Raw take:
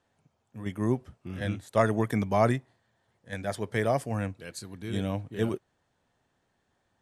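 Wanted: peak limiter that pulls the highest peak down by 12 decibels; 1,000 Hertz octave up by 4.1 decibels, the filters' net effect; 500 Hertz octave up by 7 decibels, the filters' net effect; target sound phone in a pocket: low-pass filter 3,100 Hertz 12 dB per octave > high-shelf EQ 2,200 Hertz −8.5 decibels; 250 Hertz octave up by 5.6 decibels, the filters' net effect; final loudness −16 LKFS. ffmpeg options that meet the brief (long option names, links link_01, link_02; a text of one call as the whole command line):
ffmpeg -i in.wav -af "equalizer=frequency=250:width_type=o:gain=5,equalizer=frequency=500:width_type=o:gain=7.5,equalizer=frequency=1000:width_type=o:gain=3.5,alimiter=limit=-17dB:level=0:latency=1,lowpass=3100,highshelf=frequency=2200:gain=-8.5,volume=14dB" out.wav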